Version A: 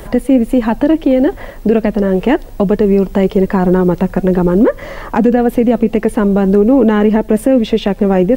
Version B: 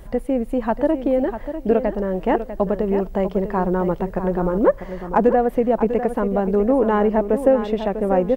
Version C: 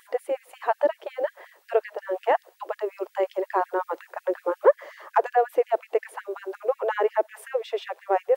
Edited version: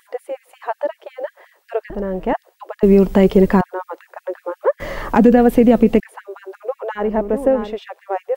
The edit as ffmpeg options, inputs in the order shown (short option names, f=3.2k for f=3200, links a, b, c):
-filter_complex "[1:a]asplit=2[a][b];[0:a]asplit=2[c][d];[2:a]asplit=5[e][f][g][h][i];[e]atrim=end=1.902[j];[a]atrim=start=1.898:end=2.332[k];[f]atrim=start=2.328:end=2.832[l];[c]atrim=start=2.828:end=3.612[m];[g]atrim=start=3.608:end=4.802[n];[d]atrim=start=4.798:end=6.002[o];[h]atrim=start=5.998:end=7.11[p];[b]atrim=start=6.95:end=7.79[q];[i]atrim=start=7.63[r];[j][k]acrossfade=d=0.004:c1=hsin:c2=hsin[s];[s][l]acrossfade=d=0.004:c1=hsin:c2=hsin[t];[t][m]acrossfade=d=0.004:c1=hsin:c2=hsin[u];[u][n]acrossfade=d=0.004:c1=hsin:c2=hsin[v];[v][o]acrossfade=d=0.004:c1=hsin:c2=hsin[w];[w][p]acrossfade=d=0.004:c1=hsin:c2=hsin[x];[x][q]acrossfade=d=0.16:c1=tri:c2=tri[y];[y][r]acrossfade=d=0.16:c1=tri:c2=tri"